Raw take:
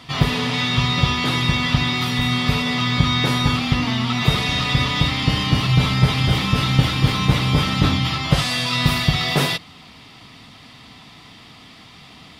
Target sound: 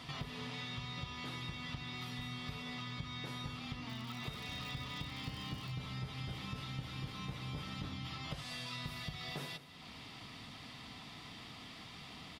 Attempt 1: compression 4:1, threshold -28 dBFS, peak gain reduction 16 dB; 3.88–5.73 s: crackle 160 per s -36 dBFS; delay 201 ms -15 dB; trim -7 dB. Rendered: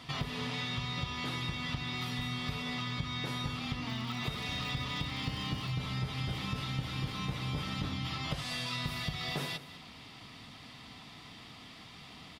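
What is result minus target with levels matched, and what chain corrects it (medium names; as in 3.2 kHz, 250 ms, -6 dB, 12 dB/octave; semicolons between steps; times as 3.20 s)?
compression: peak gain reduction -7 dB
compression 4:1, threshold -37.5 dBFS, peak gain reduction 23 dB; 3.88–5.73 s: crackle 160 per s -36 dBFS; delay 201 ms -15 dB; trim -7 dB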